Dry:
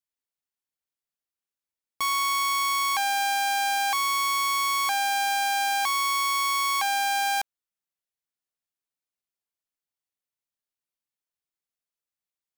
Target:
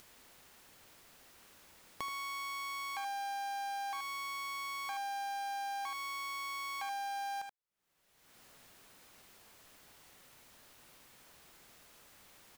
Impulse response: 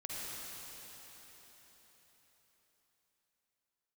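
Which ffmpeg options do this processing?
-af "acompressor=mode=upward:threshold=-28dB:ratio=2.5,highshelf=frequency=3200:gain=-8.5,aecho=1:1:43|78:0.112|0.398,acompressor=threshold=-51dB:ratio=2,volume=1dB"

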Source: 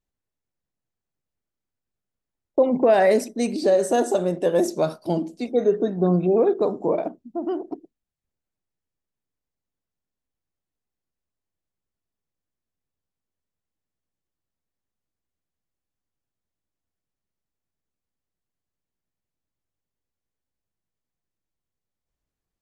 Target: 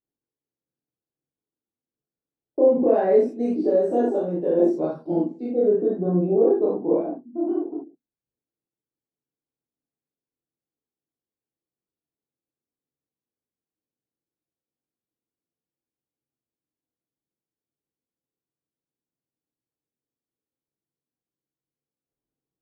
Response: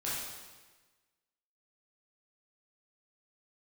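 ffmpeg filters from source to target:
-filter_complex "[0:a]bandpass=frequency=340:width_type=q:width=1.2:csg=0[link_01];[1:a]atrim=start_sample=2205,atrim=end_sample=4410[link_02];[link_01][link_02]afir=irnorm=-1:irlink=0"

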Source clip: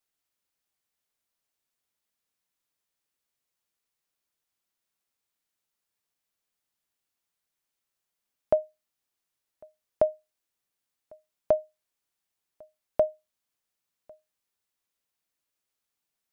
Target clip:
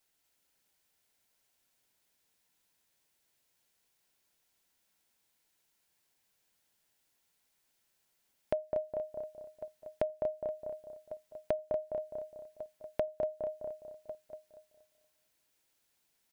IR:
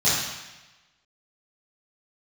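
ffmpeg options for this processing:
-filter_complex "[0:a]asplit=2[link_01][link_02];[link_02]adelay=206,lowpass=frequency=1600:poles=1,volume=-12dB,asplit=2[link_03][link_04];[link_04]adelay=206,lowpass=frequency=1600:poles=1,volume=0.35,asplit=2[link_05][link_06];[link_06]adelay=206,lowpass=frequency=1600:poles=1,volume=0.35,asplit=2[link_07][link_08];[link_08]adelay=206,lowpass=frequency=1600:poles=1,volume=0.35[link_09];[link_03][link_05][link_07][link_09]amix=inputs=4:normalize=0[link_10];[link_01][link_10]amix=inputs=2:normalize=0,alimiter=limit=-20dB:level=0:latency=1:release=290,asplit=2[link_11][link_12];[link_12]aecho=0:1:237|474|711|948:0.562|0.174|0.054|0.0168[link_13];[link_11][link_13]amix=inputs=2:normalize=0,acompressor=threshold=-43dB:ratio=2,bandreject=frequency=1200:width=7.7,volume=7dB"

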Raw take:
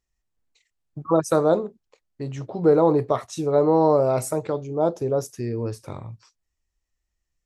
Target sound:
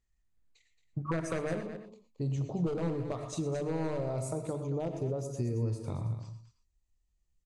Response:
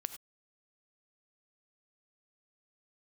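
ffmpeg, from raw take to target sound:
-filter_complex "[0:a]aeval=exprs='0.237*(abs(mod(val(0)/0.237+3,4)-2)-1)':channel_layout=same,lowpass=9300,bandreject=frequency=5500:width=8.7[link_01];[1:a]atrim=start_sample=2205,asetrate=37044,aresample=44100[link_02];[link_01][link_02]afir=irnorm=-1:irlink=0,acompressor=threshold=-29dB:ratio=5,bass=frequency=250:gain=9,treble=frequency=4000:gain=3,bandreject=frequency=75.07:width_type=h:width=4,bandreject=frequency=150.14:width_type=h:width=4,bandreject=frequency=225.21:width_type=h:width=4,bandreject=frequency=300.28:width_type=h:width=4,asetnsamples=nb_out_samples=441:pad=0,asendcmd='1.63 equalizer g -12;2.77 equalizer g -5.5',equalizer=frequency=1700:width_type=o:width=0.82:gain=4,aecho=1:1:224:0.282,volume=-5dB" -ar 24000 -c:a aac -b:a 96k

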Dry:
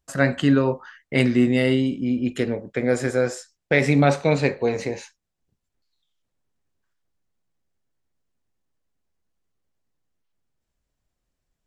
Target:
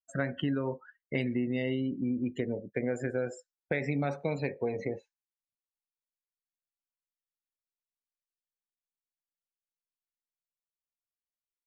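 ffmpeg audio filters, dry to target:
ffmpeg -i in.wav -af "afftdn=noise_reduction=33:noise_floor=-31,acompressor=threshold=-23dB:ratio=6,volume=-4.5dB" out.wav

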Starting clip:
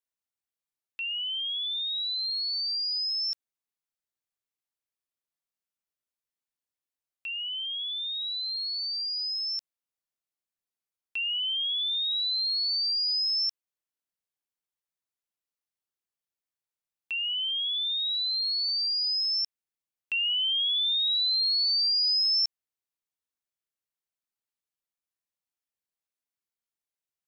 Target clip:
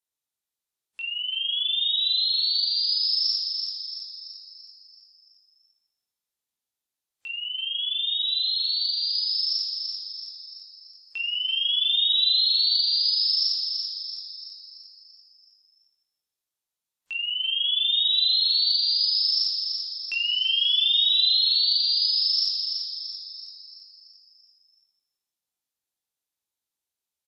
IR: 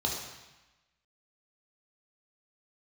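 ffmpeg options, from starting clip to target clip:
-filter_complex "[0:a]highshelf=frequency=4300:gain=7.5,alimiter=limit=-21.5dB:level=0:latency=1,aecho=1:1:336|672|1008|1344|1680|2016|2352:0.501|0.266|0.141|0.0746|0.0395|0.021|0.0111,asplit=2[link_01][link_02];[1:a]atrim=start_sample=2205,adelay=21[link_03];[link_02][link_03]afir=irnorm=-1:irlink=0,volume=-8dB[link_04];[link_01][link_04]amix=inputs=2:normalize=0,volume=-2.5dB" -ar 32000 -c:a wmav2 -b:a 128k

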